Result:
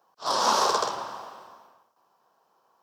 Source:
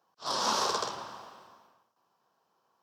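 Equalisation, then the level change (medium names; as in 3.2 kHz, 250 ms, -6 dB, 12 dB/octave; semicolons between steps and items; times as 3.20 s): peaking EQ 740 Hz +8 dB 2.6 oct; treble shelf 5.8 kHz +7 dB; 0.0 dB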